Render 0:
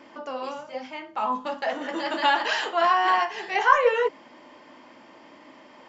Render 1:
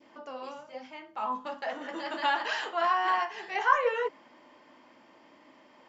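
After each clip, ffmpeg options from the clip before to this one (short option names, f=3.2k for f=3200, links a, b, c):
-af "adynamicequalizer=threshold=0.0316:dfrequency=1300:dqfactor=0.96:tfrequency=1300:tqfactor=0.96:attack=5:release=100:ratio=0.375:range=1.5:mode=boostabove:tftype=bell,volume=-8dB"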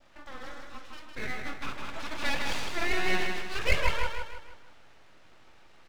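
-filter_complex "[0:a]aeval=exprs='abs(val(0))':c=same,asplit=2[a][b];[b]aecho=0:1:157|314|471|628|785:0.596|0.25|0.105|0.0441|0.0185[c];[a][c]amix=inputs=2:normalize=0"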